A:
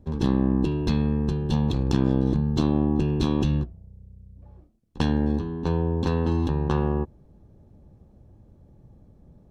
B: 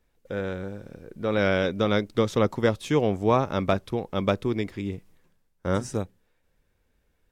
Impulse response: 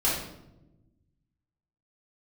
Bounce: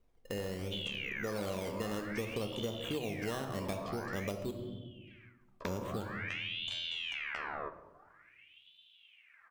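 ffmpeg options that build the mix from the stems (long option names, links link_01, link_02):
-filter_complex "[0:a]highpass=frequency=150:width=0.5412,highpass=frequency=150:width=1.3066,acompressor=threshold=-29dB:ratio=6,aeval=exprs='val(0)*sin(2*PI*2000*n/s+2000*0.65/0.49*sin(2*PI*0.49*n/s))':channel_layout=same,adelay=650,volume=-2.5dB,asplit=2[link_01][link_02];[link_02]volume=-21dB[link_03];[1:a]equalizer=frequency=1600:width_type=o:width=0.44:gain=-14,acrusher=samples=13:mix=1:aa=0.000001:lfo=1:lforange=13:lforate=0.66,volume=-5dB,asplit=3[link_04][link_05][link_06];[link_04]atrim=end=4.51,asetpts=PTS-STARTPTS,afade=type=out:start_time=4.506:duration=0.004:curve=hsin[link_07];[link_05]atrim=start=4.51:end=5.41,asetpts=PTS-STARTPTS,volume=0[link_08];[link_06]atrim=start=5.41,asetpts=PTS-STARTPTS,afade=type=in:duration=0.004:curve=hsin[link_09];[link_07][link_08][link_09]concat=n=3:v=0:a=1,asplit=2[link_10][link_11];[link_11]volume=-15dB[link_12];[2:a]atrim=start_sample=2205[link_13];[link_03][link_12]amix=inputs=2:normalize=0[link_14];[link_14][link_13]afir=irnorm=-1:irlink=0[link_15];[link_01][link_10][link_15]amix=inputs=3:normalize=0,acompressor=threshold=-35dB:ratio=6"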